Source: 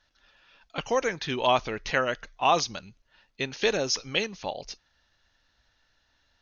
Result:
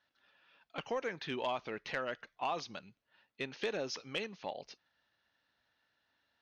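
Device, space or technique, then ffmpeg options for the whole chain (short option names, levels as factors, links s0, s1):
AM radio: -af "highpass=150,lowpass=3700,acompressor=threshold=0.0631:ratio=5,asoftclip=type=tanh:threshold=0.141,volume=0.447"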